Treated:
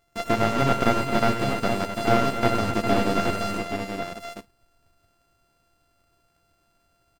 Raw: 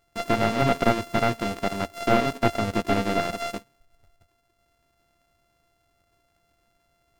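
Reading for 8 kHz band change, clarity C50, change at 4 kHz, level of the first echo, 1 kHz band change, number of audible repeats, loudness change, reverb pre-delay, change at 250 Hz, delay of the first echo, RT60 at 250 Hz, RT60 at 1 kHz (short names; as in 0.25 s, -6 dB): +2.0 dB, none, +1.5 dB, -17.0 dB, +1.5 dB, 5, +1.0 dB, none, +1.5 dB, 66 ms, none, none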